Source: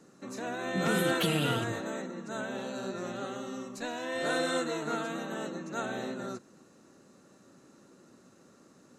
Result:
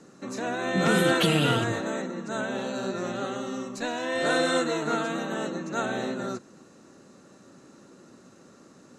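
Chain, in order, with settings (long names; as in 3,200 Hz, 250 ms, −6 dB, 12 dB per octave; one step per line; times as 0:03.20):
low-pass filter 9,500 Hz 12 dB per octave
level +6 dB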